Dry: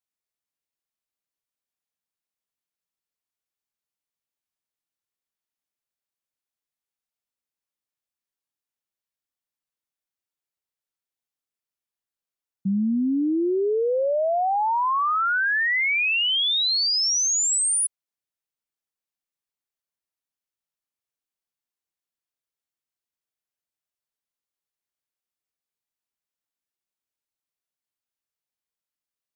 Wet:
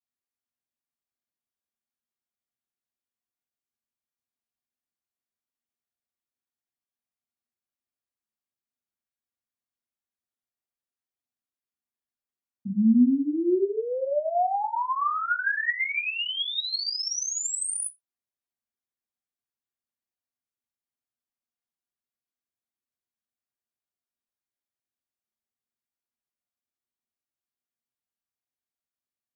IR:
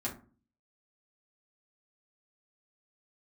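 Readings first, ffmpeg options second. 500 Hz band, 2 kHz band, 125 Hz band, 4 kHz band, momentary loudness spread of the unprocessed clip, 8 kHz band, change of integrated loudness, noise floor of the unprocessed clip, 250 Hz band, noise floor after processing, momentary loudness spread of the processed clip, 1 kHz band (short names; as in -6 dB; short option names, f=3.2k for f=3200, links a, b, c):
-4.0 dB, -5.5 dB, n/a, -8.0 dB, 4 LU, -8.0 dB, -4.5 dB, under -85 dBFS, +1.5 dB, under -85 dBFS, 6 LU, -4.0 dB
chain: -filter_complex "[1:a]atrim=start_sample=2205,atrim=end_sample=6174[a];[0:a][a]afir=irnorm=-1:irlink=0,volume=-7.5dB"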